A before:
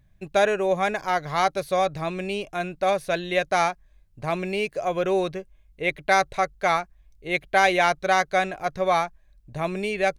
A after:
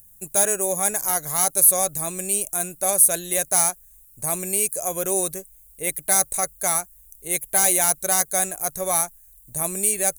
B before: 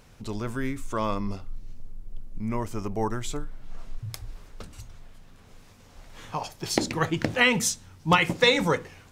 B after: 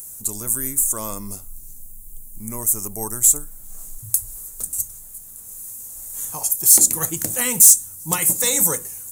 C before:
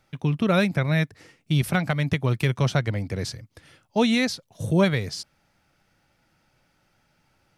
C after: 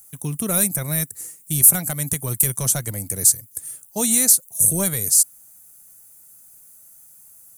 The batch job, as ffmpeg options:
-af "aexciter=amount=8.7:drive=10:freq=7.8k,apsyclip=14.5dB,highshelf=f=4.2k:t=q:w=1.5:g=11,volume=-18dB"

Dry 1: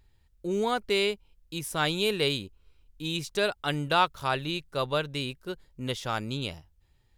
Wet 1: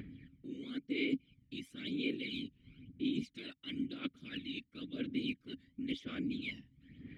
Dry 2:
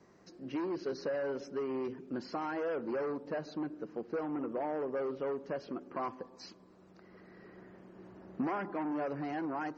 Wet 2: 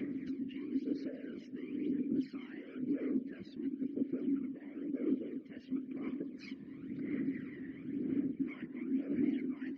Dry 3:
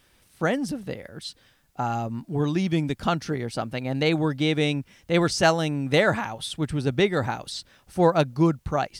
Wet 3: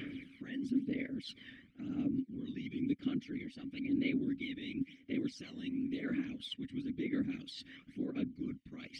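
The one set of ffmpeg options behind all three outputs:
-filter_complex "[0:a]acrossover=split=2400[a][b];[a]acompressor=mode=upward:threshold=-31dB:ratio=2.5[c];[c][b]amix=inputs=2:normalize=0,alimiter=limit=-16dB:level=0:latency=1:release=108,areverse,acompressor=threshold=-37dB:ratio=12,areverse,afftfilt=real='hypot(re,im)*cos(2*PI*random(0))':imag='hypot(re,im)*sin(2*PI*random(1))':win_size=512:overlap=0.75,asplit=3[d][e][f];[d]bandpass=f=270:t=q:w=8,volume=0dB[g];[e]bandpass=f=2.29k:t=q:w=8,volume=-6dB[h];[f]bandpass=f=3.01k:t=q:w=8,volume=-9dB[i];[g][h][i]amix=inputs=3:normalize=0,aphaser=in_gain=1:out_gain=1:delay=1.1:decay=0.59:speed=0.98:type=sinusoidal,volume=16dB"

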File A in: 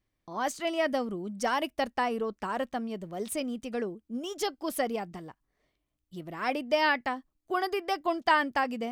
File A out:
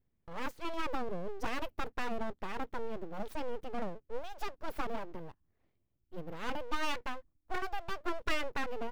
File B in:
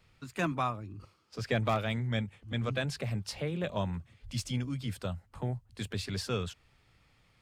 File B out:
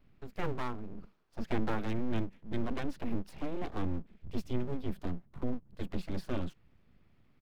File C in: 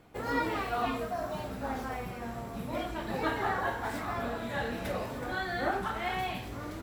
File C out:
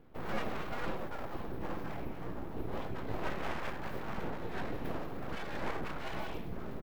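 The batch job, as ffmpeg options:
-af "firequalizer=gain_entry='entry(110,0);entry(500,-10);entry(7900,-27);entry(15000,-9)':delay=0.05:min_phase=1,aeval=exprs='abs(val(0))':c=same,volume=5dB"

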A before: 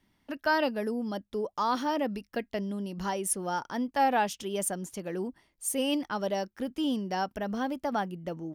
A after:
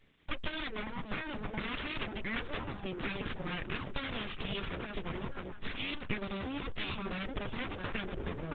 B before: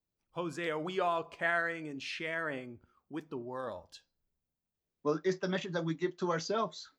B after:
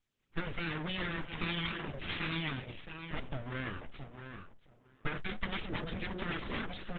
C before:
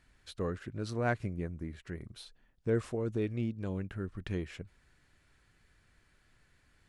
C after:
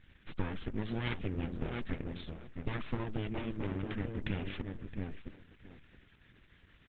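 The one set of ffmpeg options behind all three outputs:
-filter_complex "[0:a]asplit=2[a][b];[b]adelay=668,lowpass=f=860:p=1,volume=-7dB,asplit=2[c][d];[d]adelay=668,lowpass=f=860:p=1,volume=0.18,asplit=2[e][f];[f]adelay=668,lowpass=f=860:p=1,volume=0.18[g];[a][c][e][g]amix=inputs=4:normalize=0,afftfilt=real='re*lt(hypot(re,im),0.2)':imag='im*lt(hypot(re,im),0.2)':win_size=1024:overlap=0.75,aeval=exprs='abs(val(0))':c=same,acompressor=threshold=-35dB:ratio=12,aresample=8000,aresample=44100,equalizer=f=760:w=1:g=-10.5,volume=10.5dB" -ar 48000 -c:a libopus -b:a 10k

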